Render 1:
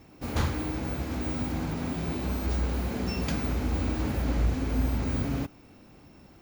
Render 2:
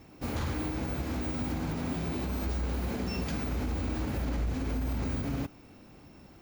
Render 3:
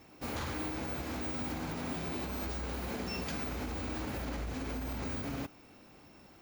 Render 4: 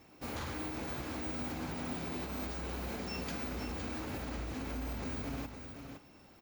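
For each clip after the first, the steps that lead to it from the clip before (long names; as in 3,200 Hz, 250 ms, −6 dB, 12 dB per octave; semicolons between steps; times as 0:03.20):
brickwall limiter −24 dBFS, peak gain reduction 9 dB
low-shelf EQ 300 Hz −9 dB
single-tap delay 513 ms −7.5 dB; level −2.5 dB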